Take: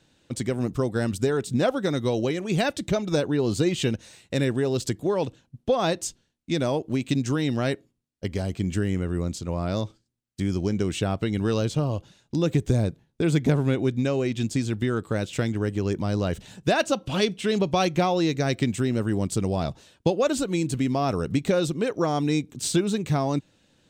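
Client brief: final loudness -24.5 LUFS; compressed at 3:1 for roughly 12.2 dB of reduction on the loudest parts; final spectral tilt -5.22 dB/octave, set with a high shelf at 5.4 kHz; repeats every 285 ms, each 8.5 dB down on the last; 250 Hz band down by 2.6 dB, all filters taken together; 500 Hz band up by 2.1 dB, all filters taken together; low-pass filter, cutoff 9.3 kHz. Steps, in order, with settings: low-pass 9.3 kHz; peaking EQ 250 Hz -5 dB; peaking EQ 500 Hz +4 dB; treble shelf 5.4 kHz +4.5 dB; compression 3:1, threshold -33 dBFS; feedback delay 285 ms, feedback 38%, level -8.5 dB; trim +10 dB

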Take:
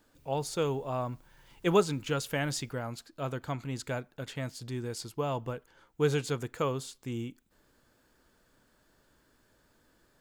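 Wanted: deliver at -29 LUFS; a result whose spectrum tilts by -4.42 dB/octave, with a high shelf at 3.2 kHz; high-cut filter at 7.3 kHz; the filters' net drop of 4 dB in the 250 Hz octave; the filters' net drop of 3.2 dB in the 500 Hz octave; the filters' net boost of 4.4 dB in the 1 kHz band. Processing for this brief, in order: low-pass 7.3 kHz; peaking EQ 250 Hz -5 dB; peaking EQ 500 Hz -4 dB; peaking EQ 1 kHz +6.5 dB; treble shelf 3.2 kHz +4 dB; trim +5 dB

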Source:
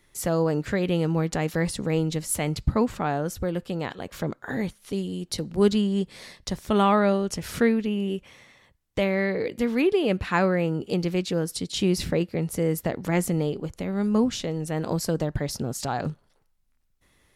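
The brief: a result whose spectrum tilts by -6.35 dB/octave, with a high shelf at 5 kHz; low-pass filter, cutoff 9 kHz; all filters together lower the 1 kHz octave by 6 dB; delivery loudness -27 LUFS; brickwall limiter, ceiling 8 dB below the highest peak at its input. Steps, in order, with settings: low-pass 9 kHz; peaking EQ 1 kHz -8 dB; treble shelf 5 kHz -5.5 dB; trim +1.5 dB; peak limiter -15 dBFS

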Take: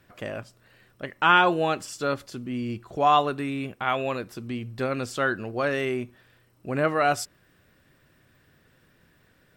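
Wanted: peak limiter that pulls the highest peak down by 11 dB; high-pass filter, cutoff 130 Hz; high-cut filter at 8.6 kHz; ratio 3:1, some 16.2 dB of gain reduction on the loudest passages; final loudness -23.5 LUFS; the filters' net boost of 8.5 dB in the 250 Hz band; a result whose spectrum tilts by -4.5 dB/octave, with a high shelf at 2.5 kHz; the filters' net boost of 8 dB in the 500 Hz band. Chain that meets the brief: high-pass 130 Hz; low-pass 8.6 kHz; peaking EQ 250 Hz +8 dB; peaking EQ 500 Hz +7.5 dB; treble shelf 2.5 kHz +8 dB; compression 3:1, threshold -33 dBFS; trim +12.5 dB; peak limiter -13 dBFS

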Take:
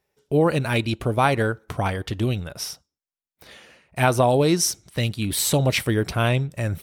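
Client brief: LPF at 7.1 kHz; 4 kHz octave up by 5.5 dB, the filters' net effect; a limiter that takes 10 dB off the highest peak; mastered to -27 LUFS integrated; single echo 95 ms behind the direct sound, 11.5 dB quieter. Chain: low-pass 7.1 kHz; peaking EQ 4 kHz +7.5 dB; peak limiter -13 dBFS; delay 95 ms -11.5 dB; trim -3 dB

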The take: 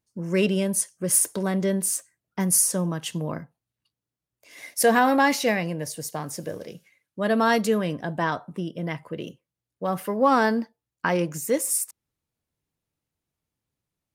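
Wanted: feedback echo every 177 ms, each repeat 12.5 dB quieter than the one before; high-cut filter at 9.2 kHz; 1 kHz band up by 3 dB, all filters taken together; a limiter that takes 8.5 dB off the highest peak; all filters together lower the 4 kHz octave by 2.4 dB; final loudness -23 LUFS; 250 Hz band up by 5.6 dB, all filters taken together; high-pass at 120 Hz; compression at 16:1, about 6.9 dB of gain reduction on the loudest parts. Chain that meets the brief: high-pass 120 Hz; low-pass 9.2 kHz; peaking EQ 250 Hz +7.5 dB; peaking EQ 1 kHz +3.5 dB; peaking EQ 4 kHz -3.5 dB; compression 16:1, threshold -17 dBFS; peak limiter -15.5 dBFS; feedback delay 177 ms, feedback 24%, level -12.5 dB; trim +3.5 dB

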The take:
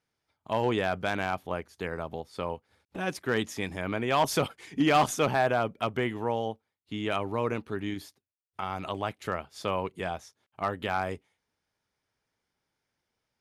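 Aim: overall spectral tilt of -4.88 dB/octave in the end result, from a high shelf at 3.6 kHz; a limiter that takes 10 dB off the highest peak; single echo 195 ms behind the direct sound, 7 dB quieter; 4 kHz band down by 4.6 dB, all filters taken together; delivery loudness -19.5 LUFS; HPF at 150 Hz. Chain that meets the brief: high-pass 150 Hz; treble shelf 3.6 kHz -4 dB; peaking EQ 4 kHz -4 dB; peak limiter -23.5 dBFS; delay 195 ms -7 dB; trim +16 dB

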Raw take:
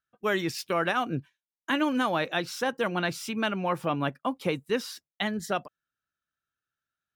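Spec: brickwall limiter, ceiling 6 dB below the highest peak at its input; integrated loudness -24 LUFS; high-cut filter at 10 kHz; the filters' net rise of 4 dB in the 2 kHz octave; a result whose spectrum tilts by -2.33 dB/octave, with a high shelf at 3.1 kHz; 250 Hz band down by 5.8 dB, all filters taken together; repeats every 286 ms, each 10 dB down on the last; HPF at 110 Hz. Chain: high-pass 110 Hz; low-pass 10 kHz; peaking EQ 250 Hz -7.5 dB; peaking EQ 2 kHz +7.5 dB; treble shelf 3.1 kHz -6.5 dB; peak limiter -16.5 dBFS; feedback delay 286 ms, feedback 32%, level -10 dB; trim +6.5 dB

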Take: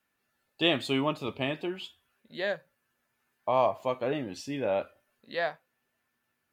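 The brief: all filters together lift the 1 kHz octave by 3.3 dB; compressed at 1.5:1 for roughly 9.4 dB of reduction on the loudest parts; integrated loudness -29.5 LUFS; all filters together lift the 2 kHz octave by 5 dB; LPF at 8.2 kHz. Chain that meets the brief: low-pass 8.2 kHz; peaking EQ 1 kHz +3 dB; peaking EQ 2 kHz +5.5 dB; compression 1.5:1, threshold -44 dBFS; trim +7 dB

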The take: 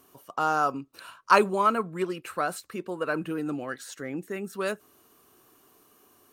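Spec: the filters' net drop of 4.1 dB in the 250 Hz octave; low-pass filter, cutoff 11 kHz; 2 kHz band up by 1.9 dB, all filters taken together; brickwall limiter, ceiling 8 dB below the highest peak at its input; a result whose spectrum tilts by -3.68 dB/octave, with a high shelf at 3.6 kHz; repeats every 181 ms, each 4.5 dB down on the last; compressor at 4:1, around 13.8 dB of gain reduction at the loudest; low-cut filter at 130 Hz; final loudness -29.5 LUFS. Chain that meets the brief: high-pass 130 Hz; low-pass 11 kHz; peaking EQ 250 Hz -5.5 dB; peaking EQ 2 kHz +4.5 dB; treble shelf 3.6 kHz -6 dB; compression 4:1, threshold -29 dBFS; peak limiter -24 dBFS; feedback delay 181 ms, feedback 60%, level -4.5 dB; trim +6 dB

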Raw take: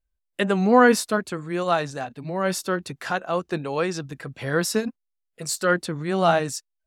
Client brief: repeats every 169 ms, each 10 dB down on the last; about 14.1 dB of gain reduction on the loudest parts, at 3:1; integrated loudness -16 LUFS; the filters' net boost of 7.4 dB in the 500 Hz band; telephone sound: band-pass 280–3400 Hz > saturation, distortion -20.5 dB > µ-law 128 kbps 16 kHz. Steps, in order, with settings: peaking EQ 500 Hz +9 dB; compression 3:1, threshold -24 dBFS; band-pass 280–3400 Hz; feedback delay 169 ms, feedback 32%, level -10 dB; saturation -16.5 dBFS; trim +13 dB; µ-law 128 kbps 16 kHz

